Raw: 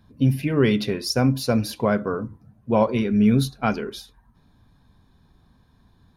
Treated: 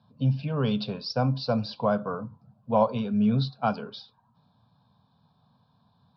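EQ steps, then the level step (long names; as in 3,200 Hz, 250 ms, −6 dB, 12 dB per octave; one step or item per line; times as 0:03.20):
high-pass filter 120 Hz 24 dB per octave
Butterworth low-pass 5,000 Hz 72 dB per octave
phaser with its sweep stopped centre 820 Hz, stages 4
0.0 dB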